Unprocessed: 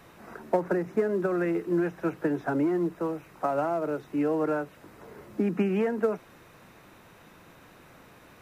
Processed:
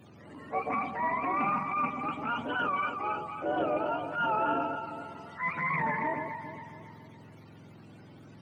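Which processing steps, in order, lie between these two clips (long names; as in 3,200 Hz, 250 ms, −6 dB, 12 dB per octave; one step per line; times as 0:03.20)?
frequency axis turned over on the octave scale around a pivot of 640 Hz
delay that swaps between a low-pass and a high-pass 138 ms, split 840 Hz, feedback 67%, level −5 dB
transient designer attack −8 dB, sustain +1 dB
highs frequency-modulated by the lows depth 0.11 ms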